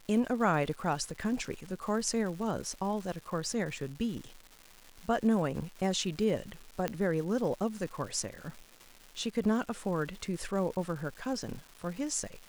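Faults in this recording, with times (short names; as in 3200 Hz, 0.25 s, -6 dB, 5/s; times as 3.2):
crackle 410/s -41 dBFS
6.88 pop -16 dBFS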